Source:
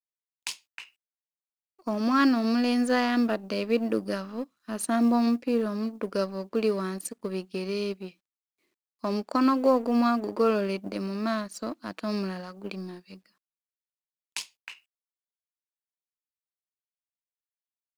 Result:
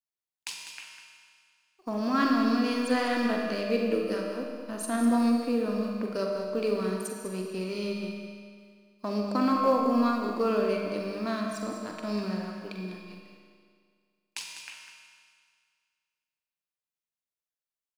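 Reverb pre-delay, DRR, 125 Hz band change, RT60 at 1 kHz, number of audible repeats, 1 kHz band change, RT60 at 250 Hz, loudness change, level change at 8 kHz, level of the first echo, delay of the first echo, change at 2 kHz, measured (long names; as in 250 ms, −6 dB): 40 ms, 0.0 dB, can't be measured, 2.0 s, 2, −0.5 dB, 2.0 s, −1.5 dB, −1.5 dB, −9.0 dB, 43 ms, −1.0 dB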